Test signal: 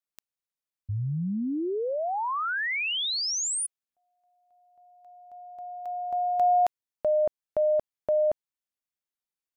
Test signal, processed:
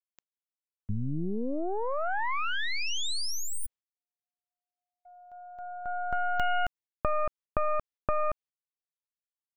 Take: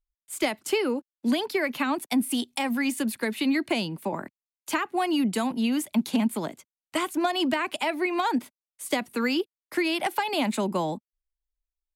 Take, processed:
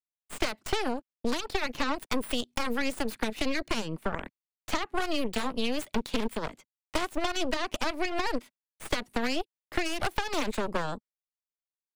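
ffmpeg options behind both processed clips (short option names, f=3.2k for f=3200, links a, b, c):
-filter_complex "[0:a]agate=range=-36dB:threshold=-52dB:ratio=16:release=106:detection=rms,aeval=exprs='0.188*(cos(1*acos(clip(val(0)/0.188,-1,1)))-cos(1*PI/2))+0.0266*(cos(3*acos(clip(val(0)/0.188,-1,1)))-cos(3*PI/2))+0.075*(cos(4*acos(clip(val(0)/0.188,-1,1)))-cos(4*PI/2))':c=same,equalizer=f=14k:t=o:w=1.4:g=-13,acrossover=split=1500|4200[a][b][c];[a]acompressor=threshold=-30dB:ratio=4[d];[b]acompressor=threshold=-41dB:ratio=4[e];[c]acompressor=threshold=-39dB:ratio=4[f];[d][e][f]amix=inputs=3:normalize=0,volume=3.5dB"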